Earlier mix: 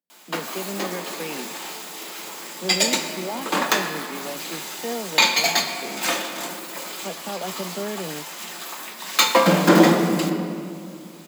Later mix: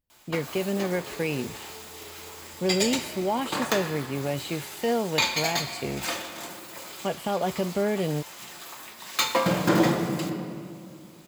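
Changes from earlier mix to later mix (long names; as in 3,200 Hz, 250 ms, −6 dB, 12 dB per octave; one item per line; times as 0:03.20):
speech +4.5 dB
first sound −7.5 dB
master: remove Butterworth high-pass 160 Hz 96 dB per octave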